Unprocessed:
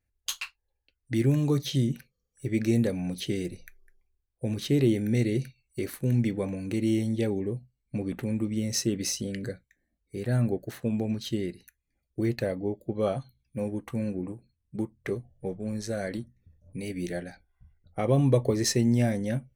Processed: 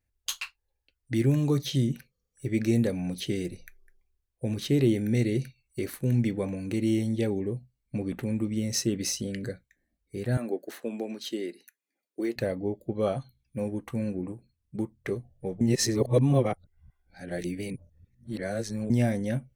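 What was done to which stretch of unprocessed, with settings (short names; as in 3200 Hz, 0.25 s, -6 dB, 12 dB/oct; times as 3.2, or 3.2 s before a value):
10.37–12.36 HPF 270 Hz 24 dB/oct
15.61–18.9 reverse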